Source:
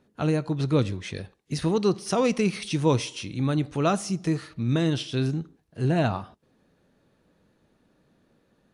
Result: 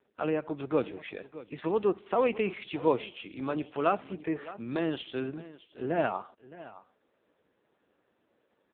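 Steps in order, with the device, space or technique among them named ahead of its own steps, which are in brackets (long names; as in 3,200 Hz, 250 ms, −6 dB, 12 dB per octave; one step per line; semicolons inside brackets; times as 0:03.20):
satellite phone (band-pass filter 380–3,300 Hz; single-tap delay 615 ms −17 dB; AMR narrowband 5.9 kbit/s 8,000 Hz)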